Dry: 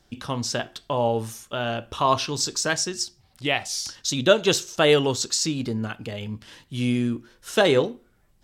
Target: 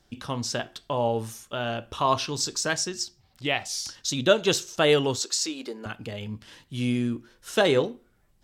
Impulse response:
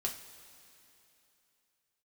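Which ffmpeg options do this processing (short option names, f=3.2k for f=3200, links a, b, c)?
-filter_complex "[0:a]asettb=1/sr,asplit=3[a][b][c];[a]atrim=end=2.884[d];[b]atrim=start=2.88:end=3.66,asetpts=PTS-STARTPTS,afade=t=in:d=0.004:c=qsin,afade=t=out:st=0.776:d=0.004:c=qsin,equalizer=f=9.8k:t=o:w=0.27:g=-9.5[e];[c]atrim=start=3.656[f];[d][e]acrossfade=d=0.004:c1=hsin:c2=qsin[g];[g][f]acrossfade=d=0.004:c1=qsin:c2=hsin,asettb=1/sr,asplit=3[h][i][j];[h]atrim=end=5.194[k];[i]atrim=start=5.19:end=5.86,asetpts=PTS-STARTPTS,afade=t=in:d=0.004:c=qsin,afade=t=out:st=0.666:d=0.004:c=qsin,highpass=f=320:w=0.5412,highpass=f=320:w=1.3066[l];[j]atrim=start=5.856[m];[k][l]acrossfade=d=0.004:c1=hsin:c2=qsin[n];[n][m]acrossfade=d=0.004:c1=qsin:c2=hsin,volume=-2.5dB"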